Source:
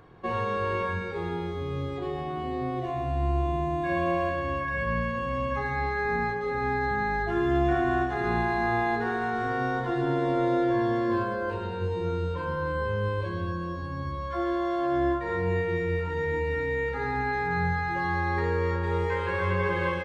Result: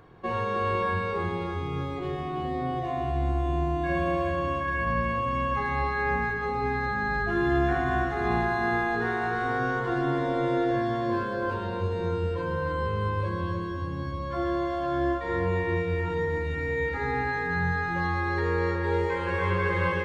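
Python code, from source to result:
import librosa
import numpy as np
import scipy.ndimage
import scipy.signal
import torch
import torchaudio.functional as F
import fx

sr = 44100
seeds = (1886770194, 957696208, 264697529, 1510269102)

y = fx.echo_feedback(x, sr, ms=309, feedback_pct=52, wet_db=-7)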